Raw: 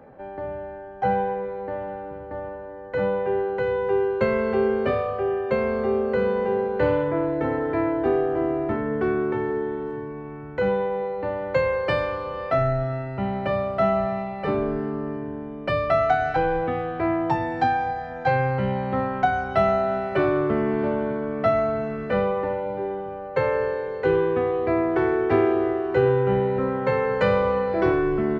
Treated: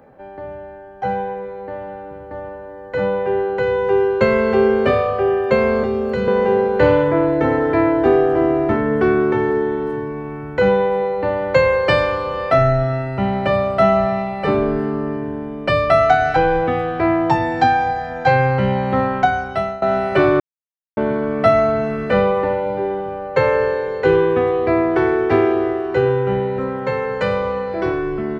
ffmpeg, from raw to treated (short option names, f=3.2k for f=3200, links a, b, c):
-filter_complex "[0:a]asettb=1/sr,asplit=3[a][b][c];[a]atrim=end=5.834[d];[b]atrim=start=5.83:end=6.28,asetpts=PTS-STARTPTS,afade=t=in:d=0.004:c=qsin,afade=t=out:st=0.446:d=0.004:c=qsin,acrossover=split=240|3000[e][f][g];[f]acompressor=threshold=-27dB:ratio=6:attack=3.2:release=140:knee=2.83:detection=peak[h];[e][h][g]amix=inputs=3:normalize=0[i];[c]atrim=start=6.276[j];[d][i]acrossfade=d=0.004:c1=hsin:c2=qsin[k];[k][j]acrossfade=d=0.004:c1=qsin:c2=hsin,asplit=4[l][m][n][o];[l]atrim=end=19.82,asetpts=PTS-STARTPTS,afade=t=out:st=19.11:d=0.71:silence=0.112202[p];[m]atrim=start=19.82:end=20.4,asetpts=PTS-STARTPTS,afade=t=in:d=0.004:c=hsin:silence=0.112202,afade=t=out:st=0.576:d=0.004:c=hsin[q];[n]atrim=start=20.4:end=20.97,asetpts=PTS-STARTPTS,volume=0[r];[o]atrim=start=20.97,asetpts=PTS-STARTPTS,afade=t=in:d=0.004:c=hsin[s];[p][q][r][s]concat=n=4:v=0:a=1,highshelf=f=4.2k:g=8,dynaudnorm=f=310:g=21:m=11.5dB"